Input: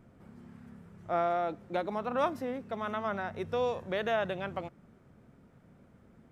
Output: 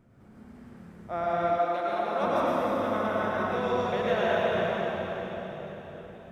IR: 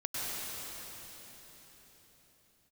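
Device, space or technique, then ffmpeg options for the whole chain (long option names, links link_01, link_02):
cathedral: -filter_complex "[1:a]atrim=start_sample=2205[link_01];[0:a][link_01]afir=irnorm=-1:irlink=0,asettb=1/sr,asplit=3[link_02][link_03][link_04];[link_02]atrim=end=1.584[link_05];[link_03]atrim=start=1.58:end=2.23,asetpts=PTS-STARTPTS,afade=type=in:duration=0.004:curve=qsin,afade=type=out:start_time=0.646:duration=0.004:curve=qsin,highpass=frequency=420:poles=1[link_06];[link_04]atrim=start=2.226[link_07];[link_05][link_06]acrossfade=duration=0.004:curve1=hsin:curve2=qsin[link_08];[link_08][link_07]acrossfade=duration=0.004:curve1=qsin:curve2=hsin"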